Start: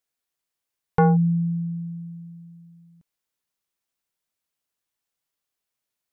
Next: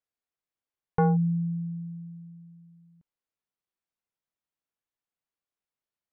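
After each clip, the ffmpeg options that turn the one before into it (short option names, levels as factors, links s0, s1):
-af "lowpass=f=1800:p=1,volume=0.562"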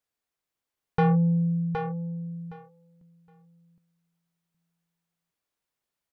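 -filter_complex "[0:a]asoftclip=type=tanh:threshold=0.0708,asplit=2[s0][s1];[s1]aecho=0:1:766|1532|2298:0.501|0.0802|0.0128[s2];[s0][s2]amix=inputs=2:normalize=0,volume=1.88"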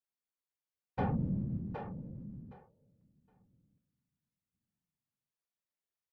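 -af "afftfilt=real='hypot(re,im)*cos(2*PI*random(0))':imag='hypot(re,im)*sin(2*PI*random(1))':win_size=512:overlap=0.75,equalizer=f=110:w=1.5:g=2.5,volume=0.473"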